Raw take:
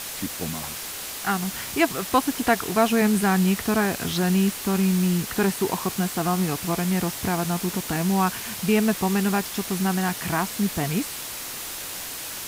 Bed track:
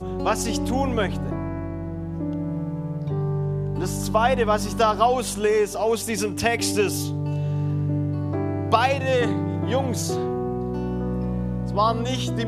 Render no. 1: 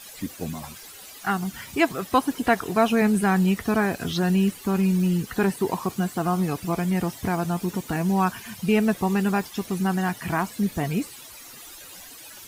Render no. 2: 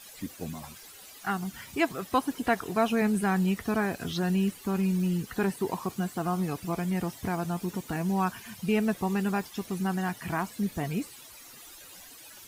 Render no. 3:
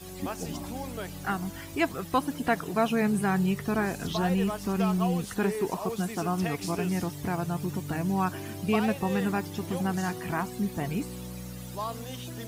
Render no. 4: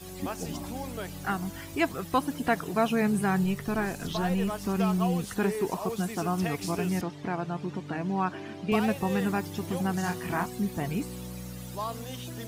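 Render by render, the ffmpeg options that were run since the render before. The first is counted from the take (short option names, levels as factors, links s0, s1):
-af "afftdn=nr=14:nf=-34"
-af "volume=0.531"
-filter_complex "[1:a]volume=0.2[s0];[0:a][s0]amix=inputs=2:normalize=0"
-filter_complex "[0:a]asettb=1/sr,asplit=3[s0][s1][s2];[s0]atrim=end=3.444[s3];[s1]atrim=start=3.44:end=4.51,asetpts=PTS-STARTPTS,afade=t=in:d=0.004:c=qsin,afade=t=out:st=1.066:d=0.004:c=qsin,aeval=exprs='if(lt(val(0),0),0.708*val(0),val(0))':c=same[s4];[s2]atrim=start=4.506[s5];[s3][s4]acrossfade=d=0.004:c1=hsin:c2=qsin[s6];[s6][s5]acrossfade=d=0.004:c1=qsin:c2=hsin,asettb=1/sr,asplit=3[s7][s8][s9];[s7]atrim=end=7.014[s10];[s8]atrim=start=7.01:end=8.72,asetpts=PTS-STARTPTS,afade=t=in:d=0.004:c=qsin,afade=t=out:st=1.706:d=0.004:c=qsin,highpass=180,lowpass=3700[s11];[s9]atrim=start=8.716[s12];[s10][s11]acrossfade=d=0.004:c1=hsin:c2=qsin[s13];[s13][s12]acrossfade=d=0.004:c1=qsin:c2=hsin,asettb=1/sr,asplit=3[s14][s15][s16];[s14]atrim=end=10.014[s17];[s15]atrim=start=10.01:end=10.46,asetpts=PTS-STARTPTS,afade=t=in:d=0.004:c=qsin,afade=t=out:st=0.446:d=0.004:c=qsin,asplit=2[s18][s19];[s19]adelay=29,volume=0.531[s20];[s18][s20]amix=inputs=2:normalize=0,atrim=end_sample=19845[s21];[s16]atrim=start=10.456[s22];[s17][s21]acrossfade=d=0.004:c1=hsin:c2=qsin[s23];[s23][s22]acrossfade=d=0.004:c1=qsin:c2=hsin"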